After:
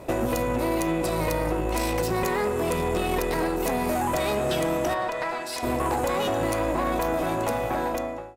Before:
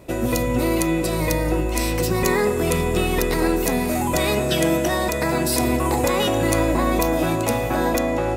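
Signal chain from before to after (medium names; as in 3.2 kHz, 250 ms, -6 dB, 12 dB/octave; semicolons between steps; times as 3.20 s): fade out at the end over 1.48 s; peaking EQ 790 Hz +7.5 dB 1.7 oct; compression 6:1, threshold -22 dBFS, peak gain reduction 10.5 dB; 4.93–5.62 s: band-pass filter 1 kHz -> 3.2 kHz, Q 0.61; valve stage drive 21 dB, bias 0.55; trim +3 dB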